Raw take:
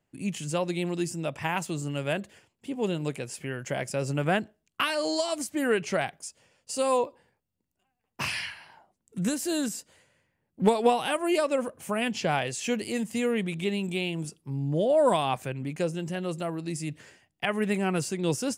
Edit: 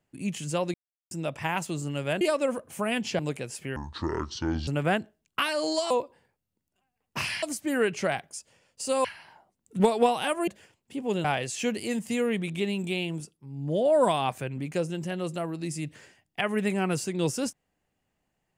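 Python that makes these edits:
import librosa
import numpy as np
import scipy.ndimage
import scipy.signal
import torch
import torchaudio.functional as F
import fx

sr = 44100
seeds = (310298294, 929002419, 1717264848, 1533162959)

y = fx.edit(x, sr, fx.silence(start_s=0.74, length_s=0.37),
    fx.swap(start_s=2.21, length_s=0.77, other_s=11.31, other_length_s=0.98),
    fx.speed_span(start_s=3.55, length_s=0.54, speed=0.59),
    fx.move(start_s=6.94, length_s=1.52, to_s=5.32),
    fx.cut(start_s=9.21, length_s=1.42),
    fx.fade_down_up(start_s=14.15, length_s=0.7, db=-10.5, fade_s=0.31), tone=tone)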